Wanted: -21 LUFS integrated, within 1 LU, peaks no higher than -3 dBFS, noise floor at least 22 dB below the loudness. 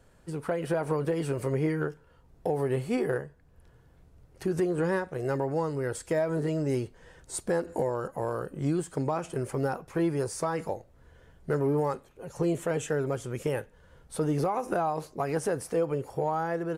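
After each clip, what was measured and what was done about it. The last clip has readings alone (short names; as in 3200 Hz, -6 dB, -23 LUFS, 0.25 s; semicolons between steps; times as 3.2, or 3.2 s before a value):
loudness -30.5 LUFS; peak -18.0 dBFS; loudness target -21.0 LUFS
-> gain +9.5 dB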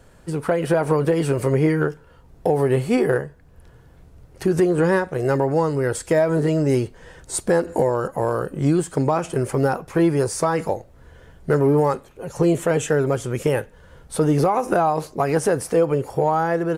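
loudness -21.0 LUFS; peak -8.5 dBFS; noise floor -50 dBFS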